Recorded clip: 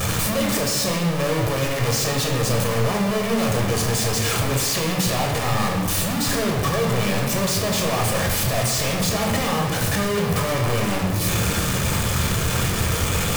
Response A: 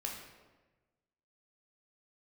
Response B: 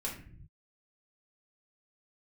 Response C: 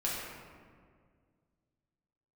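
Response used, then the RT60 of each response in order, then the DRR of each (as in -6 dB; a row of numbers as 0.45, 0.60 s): A; 1.2 s, not exponential, 2.0 s; -0.5, -4.0, -6.5 dB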